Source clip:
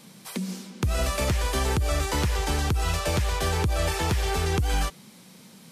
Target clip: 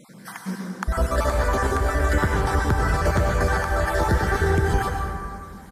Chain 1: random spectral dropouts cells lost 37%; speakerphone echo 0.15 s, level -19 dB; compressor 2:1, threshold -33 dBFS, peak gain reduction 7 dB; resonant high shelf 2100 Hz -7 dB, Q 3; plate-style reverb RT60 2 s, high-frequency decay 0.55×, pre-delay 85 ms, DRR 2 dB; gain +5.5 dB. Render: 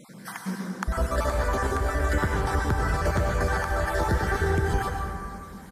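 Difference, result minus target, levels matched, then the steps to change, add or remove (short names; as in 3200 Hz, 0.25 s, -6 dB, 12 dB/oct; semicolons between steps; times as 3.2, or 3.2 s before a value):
compressor: peak gain reduction +4 dB
change: compressor 2:1, threshold -25 dBFS, peak gain reduction 3 dB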